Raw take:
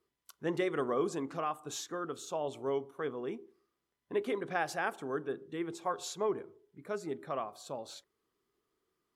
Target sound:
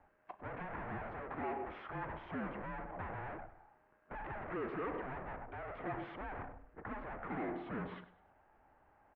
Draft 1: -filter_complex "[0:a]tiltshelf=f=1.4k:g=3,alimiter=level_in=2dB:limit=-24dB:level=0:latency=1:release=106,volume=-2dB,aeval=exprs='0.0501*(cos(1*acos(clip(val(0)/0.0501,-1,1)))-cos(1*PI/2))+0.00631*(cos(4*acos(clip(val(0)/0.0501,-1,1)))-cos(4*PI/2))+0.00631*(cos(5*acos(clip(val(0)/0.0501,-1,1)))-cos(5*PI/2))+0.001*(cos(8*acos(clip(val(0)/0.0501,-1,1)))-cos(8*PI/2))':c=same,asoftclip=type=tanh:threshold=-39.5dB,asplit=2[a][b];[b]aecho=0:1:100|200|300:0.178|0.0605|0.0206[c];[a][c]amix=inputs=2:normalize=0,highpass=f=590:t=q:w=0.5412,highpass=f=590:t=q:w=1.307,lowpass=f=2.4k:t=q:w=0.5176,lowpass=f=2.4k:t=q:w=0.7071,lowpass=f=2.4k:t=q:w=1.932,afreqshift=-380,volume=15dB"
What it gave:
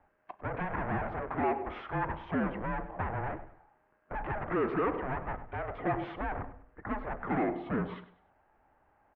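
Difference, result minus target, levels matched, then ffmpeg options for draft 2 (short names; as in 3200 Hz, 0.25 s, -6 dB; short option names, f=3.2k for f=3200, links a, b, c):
soft clip: distortion -4 dB
-filter_complex "[0:a]tiltshelf=f=1.4k:g=3,alimiter=level_in=2dB:limit=-24dB:level=0:latency=1:release=106,volume=-2dB,aeval=exprs='0.0501*(cos(1*acos(clip(val(0)/0.0501,-1,1)))-cos(1*PI/2))+0.00631*(cos(4*acos(clip(val(0)/0.0501,-1,1)))-cos(4*PI/2))+0.00631*(cos(5*acos(clip(val(0)/0.0501,-1,1)))-cos(5*PI/2))+0.001*(cos(8*acos(clip(val(0)/0.0501,-1,1)))-cos(8*PI/2))':c=same,asoftclip=type=tanh:threshold=-51dB,asplit=2[a][b];[b]aecho=0:1:100|200|300:0.178|0.0605|0.0206[c];[a][c]amix=inputs=2:normalize=0,highpass=f=590:t=q:w=0.5412,highpass=f=590:t=q:w=1.307,lowpass=f=2.4k:t=q:w=0.5176,lowpass=f=2.4k:t=q:w=0.7071,lowpass=f=2.4k:t=q:w=1.932,afreqshift=-380,volume=15dB"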